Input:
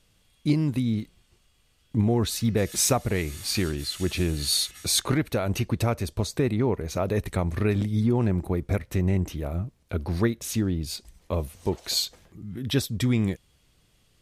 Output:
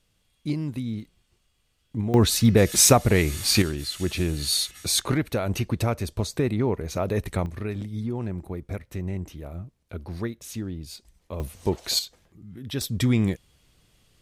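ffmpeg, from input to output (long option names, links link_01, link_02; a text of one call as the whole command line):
ffmpeg -i in.wav -af "asetnsamples=nb_out_samples=441:pad=0,asendcmd='2.14 volume volume 6.5dB;3.62 volume volume 0dB;7.46 volume volume -7dB;11.4 volume volume 2dB;11.99 volume volume -6dB;12.81 volume volume 2dB',volume=-5dB" out.wav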